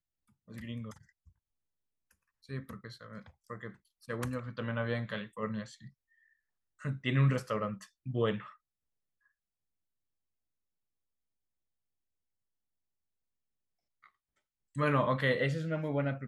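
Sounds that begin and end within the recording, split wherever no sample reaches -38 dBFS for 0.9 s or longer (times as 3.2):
2.5–5.63
6.85–8.4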